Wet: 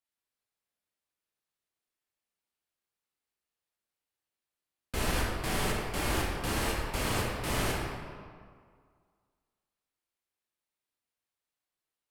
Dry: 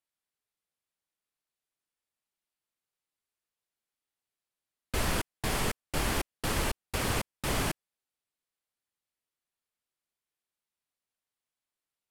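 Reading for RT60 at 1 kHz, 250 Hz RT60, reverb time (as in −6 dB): 2.0 s, 1.9 s, 2.0 s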